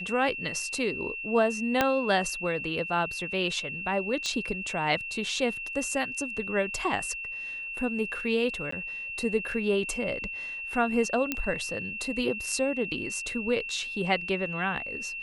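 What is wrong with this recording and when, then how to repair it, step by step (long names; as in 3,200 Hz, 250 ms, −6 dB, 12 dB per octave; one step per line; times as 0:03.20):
whistle 2,700 Hz −34 dBFS
0:01.81: click −8 dBFS
0:04.26: click −19 dBFS
0:08.71–0:08.72: drop-out 14 ms
0:11.32: click −12 dBFS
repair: click removal
notch filter 2,700 Hz, Q 30
repair the gap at 0:08.71, 14 ms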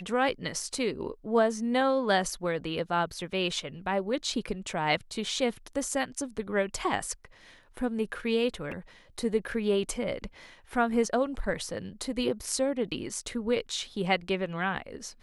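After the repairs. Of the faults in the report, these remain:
0:01.81: click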